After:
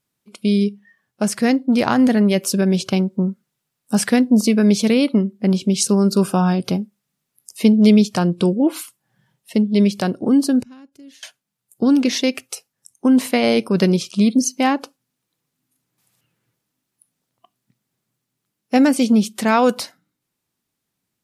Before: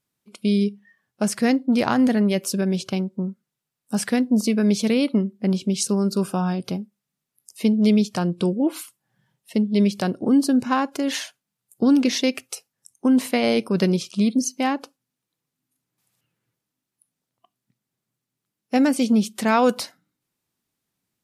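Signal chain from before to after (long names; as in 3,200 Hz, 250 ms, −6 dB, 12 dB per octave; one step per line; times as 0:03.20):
0:10.63–0:11.23: guitar amp tone stack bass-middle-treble 10-0-1
speech leveller 2 s
level +4 dB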